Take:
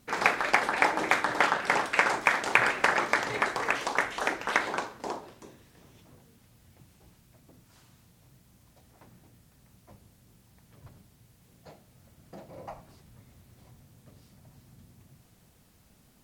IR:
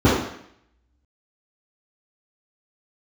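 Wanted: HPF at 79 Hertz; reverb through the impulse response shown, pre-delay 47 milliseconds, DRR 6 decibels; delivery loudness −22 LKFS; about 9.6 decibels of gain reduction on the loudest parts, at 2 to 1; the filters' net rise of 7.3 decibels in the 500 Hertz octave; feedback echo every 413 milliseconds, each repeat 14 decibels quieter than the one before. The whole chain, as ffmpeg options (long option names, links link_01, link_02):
-filter_complex "[0:a]highpass=79,equalizer=frequency=500:width_type=o:gain=9,acompressor=threshold=-36dB:ratio=2,aecho=1:1:413|826:0.2|0.0399,asplit=2[link_01][link_02];[1:a]atrim=start_sample=2205,adelay=47[link_03];[link_02][link_03]afir=irnorm=-1:irlink=0,volume=-29.5dB[link_04];[link_01][link_04]amix=inputs=2:normalize=0,volume=11dB"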